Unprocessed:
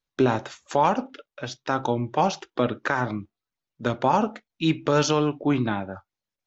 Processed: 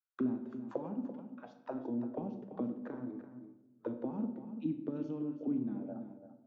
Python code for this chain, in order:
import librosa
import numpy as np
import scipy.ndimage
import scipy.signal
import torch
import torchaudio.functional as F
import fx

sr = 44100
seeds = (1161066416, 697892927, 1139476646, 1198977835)

p1 = fx.auto_wah(x, sr, base_hz=240.0, top_hz=1400.0, q=5.4, full_db=-20.0, direction='down')
p2 = p1 + fx.echo_single(p1, sr, ms=338, db=-11.5, dry=0)
p3 = fx.room_shoebox(p2, sr, seeds[0], volume_m3=440.0, walls='mixed', distance_m=0.6)
y = p3 * 10.0 ** (-5.5 / 20.0)